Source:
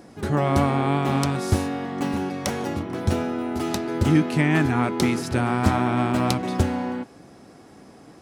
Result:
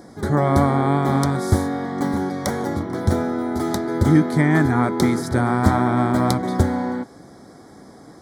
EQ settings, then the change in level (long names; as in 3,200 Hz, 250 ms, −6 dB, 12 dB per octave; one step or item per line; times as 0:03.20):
dynamic equaliser 5,200 Hz, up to −4 dB, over −43 dBFS, Q 0.88
Butterworth band-reject 2,700 Hz, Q 2.2
+3.5 dB